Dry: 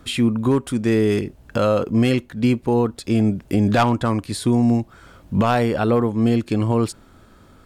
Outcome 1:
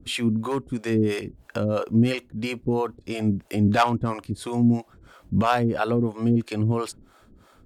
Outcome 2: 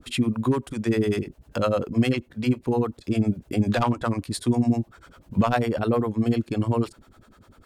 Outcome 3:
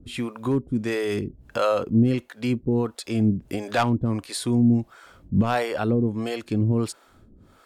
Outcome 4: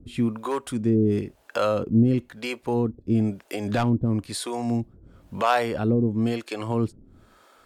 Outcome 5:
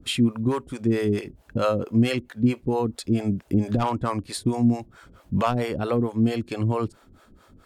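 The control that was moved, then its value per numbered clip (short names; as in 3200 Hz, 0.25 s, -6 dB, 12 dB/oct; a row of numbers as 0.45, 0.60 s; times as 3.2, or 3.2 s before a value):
harmonic tremolo, rate: 3, 10, 1.5, 1, 4.5 Hz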